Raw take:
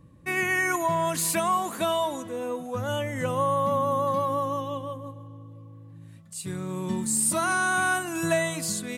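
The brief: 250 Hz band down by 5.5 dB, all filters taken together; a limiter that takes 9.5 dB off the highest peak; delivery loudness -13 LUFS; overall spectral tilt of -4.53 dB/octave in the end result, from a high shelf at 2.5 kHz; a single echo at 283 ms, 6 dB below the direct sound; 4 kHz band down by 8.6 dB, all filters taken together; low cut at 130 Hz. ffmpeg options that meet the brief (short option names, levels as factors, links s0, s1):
-af "highpass=130,equalizer=f=250:t=o:g=-7.5,highshelf=f=2500:g=-3.5,equalizer=f=4000:t=o:g=-8.5,alimiter=level_in=1.12:limit=0.0631:level=0:latency=1,volume=0.891,aecho=1:1:283:0.501,volume=9.44"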